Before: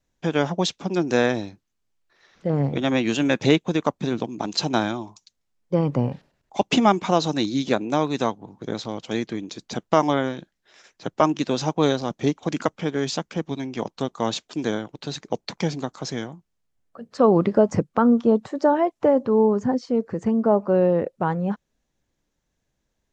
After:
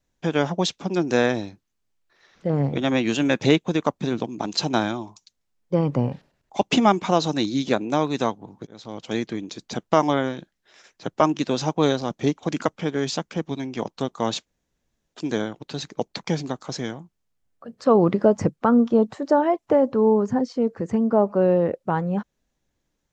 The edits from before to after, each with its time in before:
0:08.67–0:09.09: fade in
0:14.46: splice in room tone 0.67 s

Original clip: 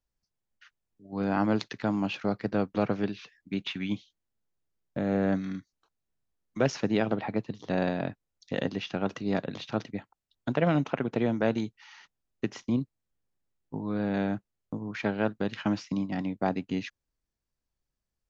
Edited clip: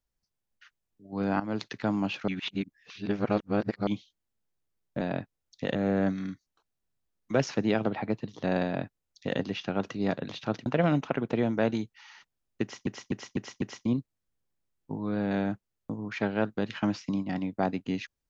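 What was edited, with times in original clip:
0:01.40–0:01.71: fade in, from −15 dB
0:02.28–0:03.87: reverse
0:07.90–0:08.64: duplicate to 0:05.01
0:09.92–0:10.49: remove
0:12.45–0:12.70: repeat, 5 plays

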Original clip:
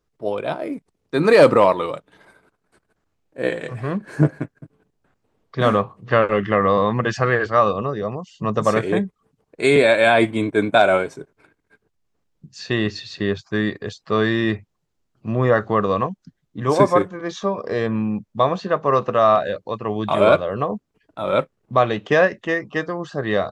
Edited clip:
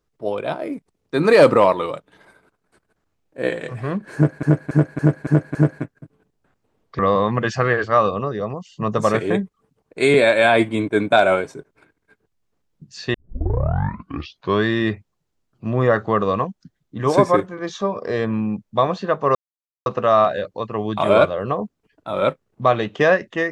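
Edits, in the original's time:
0:04.15–0:04.43: repeat, 6 plays
0:05.59–0:06.61: remove
0:12.76: tape start 1.50 s
0:18.97: splice in silence 0.51 s

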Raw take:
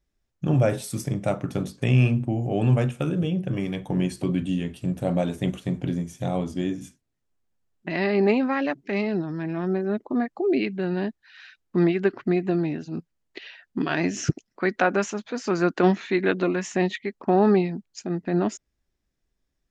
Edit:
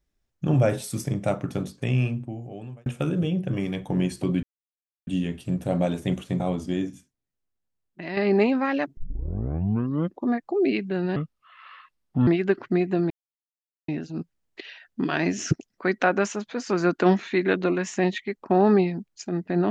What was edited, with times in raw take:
0:01.37–0:02.86: fade out
0:04.43: splice in silence 0.64 s
0:05.76–0:06.28: remove
0:06.78–0:08.05: clip gain −7 dB
0:08.85: tape start 1.32 s
0:11.04–0:11.83: play speed 71%
0:12.66: splice in silence 0.78 s

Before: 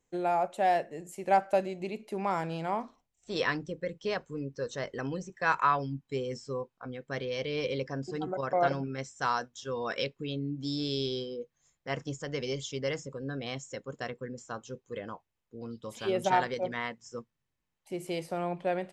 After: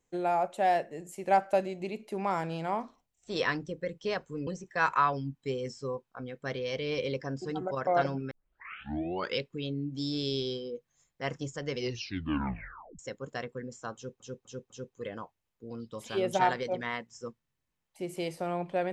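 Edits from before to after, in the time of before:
0:04.47–0:05.13: remove
0:08.97: tape start 1.09 s
0:12.44: tape stop 1.21 s
0:14.61–0:14.86: repeat, 4 plays

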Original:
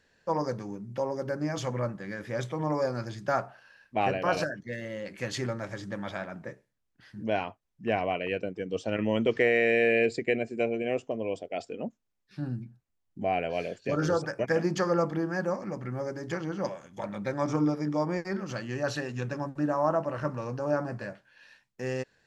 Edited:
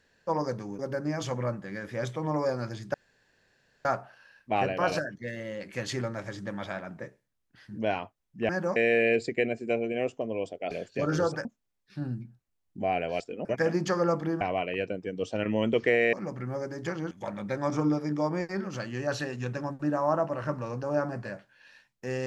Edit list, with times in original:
0:00.79–0:01.15: remove
0:03.30: splice in room tone 0.91 s
0:07.94–0:09.66: swap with 0:15.31–0:15.58
0:11.61–0:11.86: swap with 0:13.61–0:14.35
0:16.56–0:16.87: remove

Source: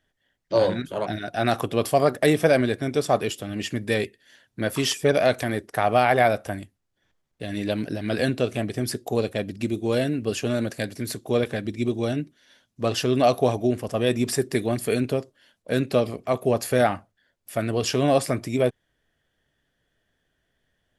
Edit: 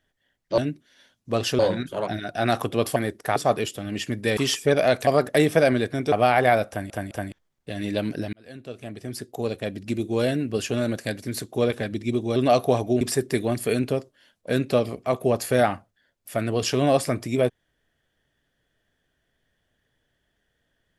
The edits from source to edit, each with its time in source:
0:01.95–0:03.00: swap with 0:05.45–0:05.85
0:04.01–0:04.75: remove
0:06.42: stutter in place 0.21 s, 3 plays
0:08.06–0:09.78: fade in
0:12.09–0:13.10: move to 0:00.58
0:13.75–0:14.22: remove

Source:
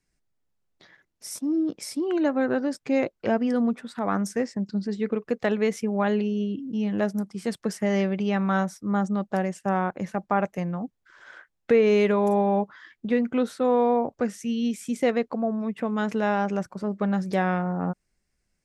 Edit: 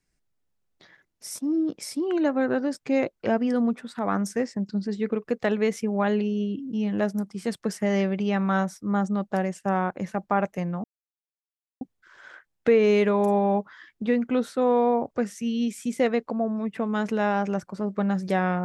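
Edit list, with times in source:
0:10.84: splice in silence 0.97 s

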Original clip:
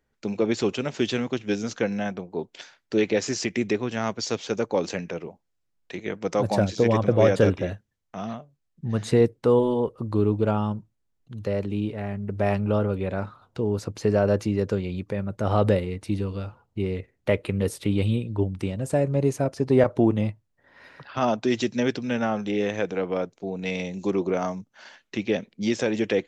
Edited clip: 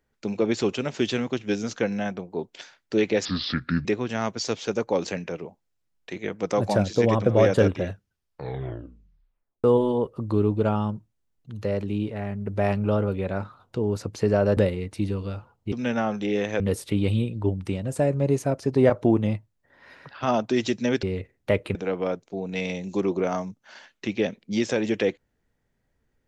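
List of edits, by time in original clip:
0:03.25–0:03.67: play speed 70%
0:07.70: tape stop 1.76 s
0:14.39–0:15.67: remove
0:16.82–0:17.54: swap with 0:21.97–0:22.85

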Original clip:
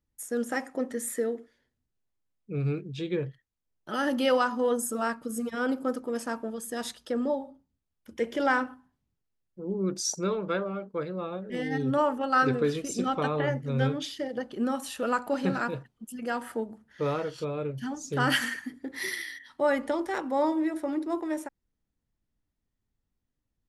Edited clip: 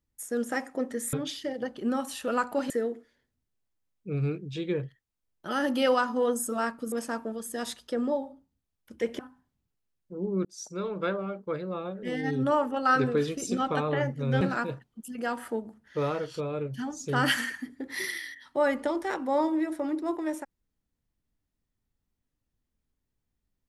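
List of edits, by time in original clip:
0:05.35–0:06.10: remove
0:08.37–0:08.66: remove
0:09.92–0:10.53: fade in
0:13.88–0:15.45: move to 0:01.13

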